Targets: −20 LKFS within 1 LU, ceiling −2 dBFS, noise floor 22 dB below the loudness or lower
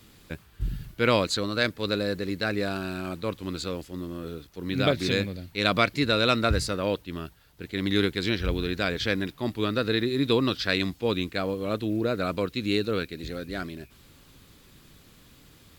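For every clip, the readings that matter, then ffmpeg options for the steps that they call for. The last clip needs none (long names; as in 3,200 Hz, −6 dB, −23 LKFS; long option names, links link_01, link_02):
integrated loudness −27.5 LKFS; sample peak −7.5 dBFS; target loudness −20.0 LKFS
→ -af "volume=7.5dB,alimiter=limit=-2dB:level=0:latency=1"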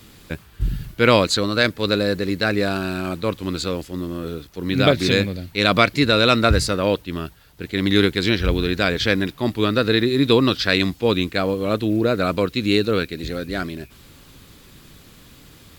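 integrated loudness −20.0 LKFS; sample peak −2.0 dBFS; background noise floor −48 dBFS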